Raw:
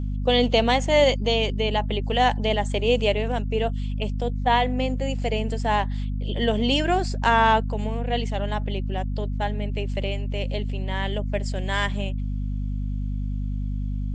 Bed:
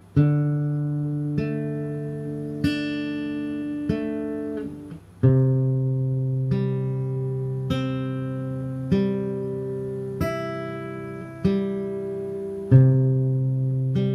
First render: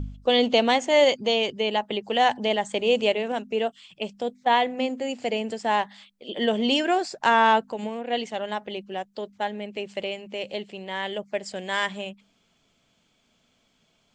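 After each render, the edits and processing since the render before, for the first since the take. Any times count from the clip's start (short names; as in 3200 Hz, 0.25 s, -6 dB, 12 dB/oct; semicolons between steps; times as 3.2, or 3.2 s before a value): de-hum 50 Hz, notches 5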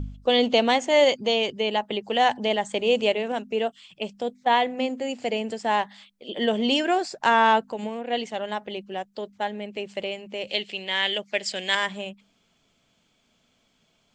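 10.47–11.75 weighting filter D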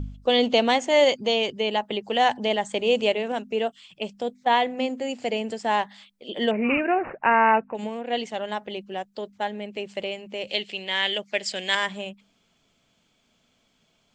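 6.51–7.75 careless resampling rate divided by 8×, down none, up filtered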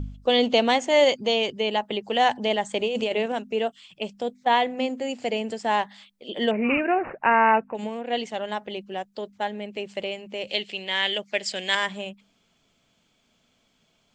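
2.8–3.26 negative-ratio compressor -24 dBFS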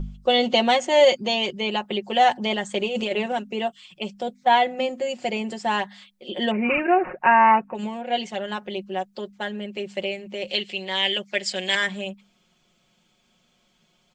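comb 5.5 ms, depth 72%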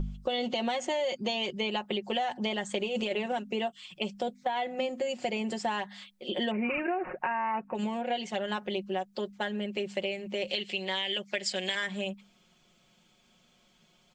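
limiter -13.5 dBFS, peak gain reduction 9 dB; compressor, threshold -28 dBFS, peak gain reduction 10.5 dB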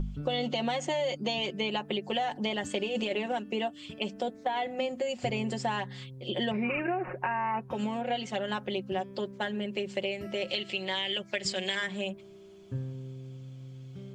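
add bed -21.5 dB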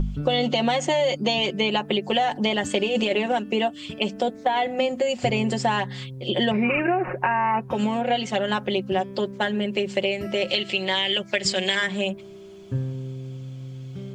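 gain +8.5 dB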